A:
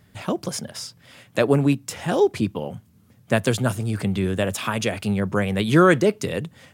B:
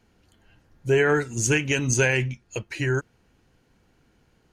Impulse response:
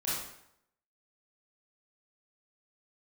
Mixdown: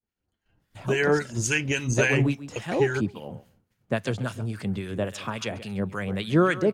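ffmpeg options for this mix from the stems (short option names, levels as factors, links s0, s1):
-filter_complex "[0:a]acrossover=split=6900[s0][s1];[s1]acompressor=threshold=0.00282:ratio=4:attack=1:release=60[s2];[s0][s2]amix=inputs=2:normalize=0,adelay=600,volume=0.668,asplit=2[s3][s4];[s4]volume=0.188[s5];[1:a]volume=1.12[s6];[s5]aecho=0:1:135|270|405:1|0.17|0.0289[s7];[s3][s6][s7]amix=inputs=3:normalize=0,agate=range=0.0224:threshold=0.00447:ratio=3:detection=peak,acrossover=split=1200[s8][s9];[s8]aeval=exprs='val(0)*(1-0.7/2+0.7/2*cos(2*PI*3.6*n/s))':c=same[s10];[s9]aeval=exprs='val(0)*(1-0.7/2-0.7/2*cos(2*PI*3.6*n/s))':c=same[s11];[s10][s11]amix=inputs=2:normalize=0"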